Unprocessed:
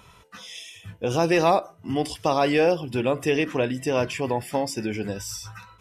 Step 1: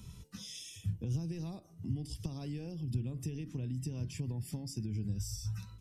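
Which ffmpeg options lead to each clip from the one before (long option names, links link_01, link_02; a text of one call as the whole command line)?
ffmpeg -i in.wav -filter_complex "[0:a]acompressor=threshold=-30dB:ratio=2.5,firequalizer=gain_entry='entry(170,0);entry(550,-22);entry(1300,-24);entry(4900,-7)':delay=0.05:min_phase=1,acrossover=split=130[link_01][link_02];[link_02]acompressor=threshold=-50dB:ratio=5[link_03];[link_01][link_03]amix=inputs=2:normalize=0,volume=7dB" out.wav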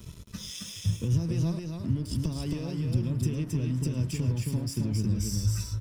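ffmpeg -i in.wav -filter_complex "[0:a]aeval=exprs='sgn(val(0))*max(abs(val(0))-0.0015,0)':channel_layout=same,asuperstop=centerf=770:order=4:qfactor=5.4,asplit=2[link_01][link_02];[link_02]aecho=0:1:105|270:0.106|0.708[link_03];[link_01][link_03]amix=inputs=2:normalize=0,volume=8.5dB" out.wav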